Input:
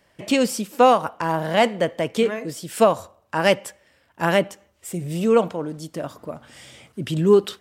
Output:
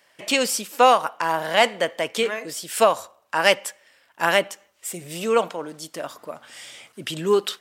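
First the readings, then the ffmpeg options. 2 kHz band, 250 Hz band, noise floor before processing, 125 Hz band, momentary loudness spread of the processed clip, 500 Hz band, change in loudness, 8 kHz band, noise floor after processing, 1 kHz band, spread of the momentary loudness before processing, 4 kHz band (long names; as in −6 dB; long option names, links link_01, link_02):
+3.5 dB, −8.5 dB, −62 dBFS, −11.5 dB, 16 LU, −2.5 dB, −0.5 dB, +5.0 dB, −61 dBFS, +1.0 dB, 16 LU, +4.5 dB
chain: -af "highpass=frequency=1100:poles=1,volume=5dB"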